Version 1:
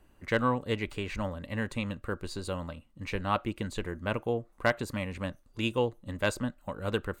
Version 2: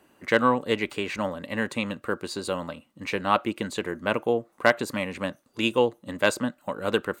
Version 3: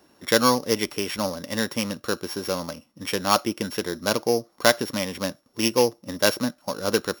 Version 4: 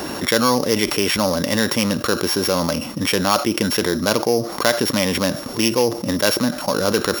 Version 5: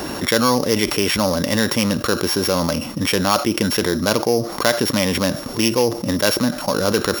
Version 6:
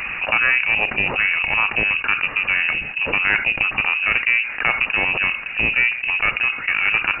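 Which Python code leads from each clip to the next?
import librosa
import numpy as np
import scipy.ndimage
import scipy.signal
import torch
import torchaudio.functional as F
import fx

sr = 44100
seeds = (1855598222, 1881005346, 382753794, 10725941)

y1 = scipy.signal.sosfilt(scipy.signal.butter(2, 210.0, 'highpass', fs=sr, output='sos'), x)
y1 = F.gain(torch.from_numpy(y1), 7.0).numpy()
y2 = np.r_[np.sort(y1[:len(y1) // 8 * 8].reshape(-1, 8), axis=1).ravel(), y1[len(y1) // 8 * 8:]]
y2 = F.gain(torch.from_numpy(y2), 2.0).numpy()
y3 = fx.env_flatten(y2, sr, amount_pct=70)
y3 = F.gain(torch.from_numpy(y3), -1.0).numpy()
y4 = fx.low_shelf(y3, sr, hz=85.0, db=7.0)
y5 = fx.clip_asym(y4, sr, top_db=-24.0, bottom_db=-5.0)
y5 = fx.freq_invert(y5, sr, carrier_hz=2800)
y5 = F.gain(torch.from_numpy(y5), 1.5).numpy()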